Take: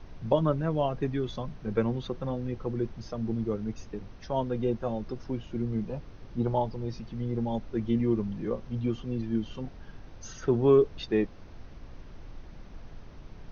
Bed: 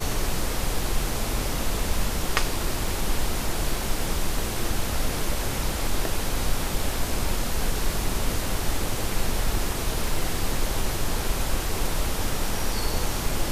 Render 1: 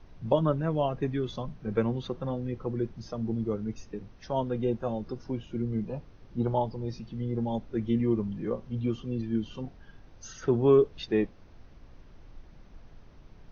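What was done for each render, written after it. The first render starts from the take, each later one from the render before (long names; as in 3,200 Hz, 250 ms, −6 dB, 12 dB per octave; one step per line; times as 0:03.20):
noise reduction from a noise print 6 dB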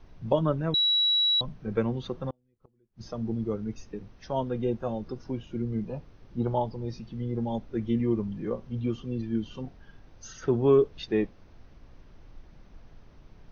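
0:00.74–0:01.41: beep over 3,900 Hz −20.5 dBFS
0:02.30–0:03.03: gate with flip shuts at −28 dBFS, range −38 dB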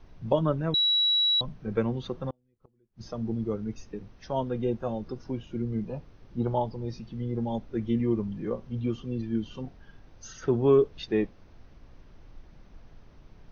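no processing that can be heard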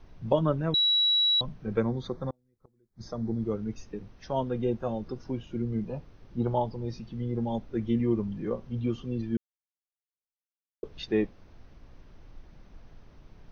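0:01.80–0:03.42: Butterworth band-reject 2,800 Hz, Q 2.4
0:09.37–0:10.83: silence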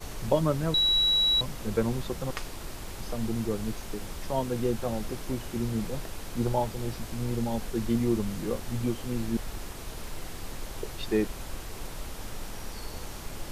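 mix in bed −12.5 dB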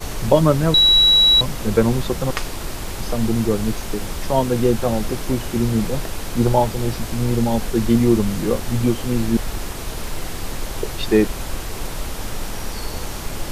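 level +11 dB
brickwall limiter −1 dBFS, peak gain reduction 1.5 dB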